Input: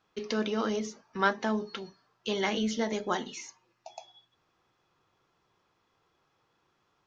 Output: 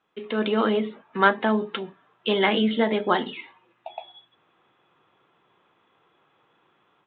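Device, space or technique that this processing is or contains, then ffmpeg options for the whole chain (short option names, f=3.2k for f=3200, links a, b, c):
Bluetooth headset: -af "highpass=160,dynaudnorm=f=260:g=3:m=9dB,aresample=8000,aresample=44100" -ar 16000 -c:a sbc -b:a 64k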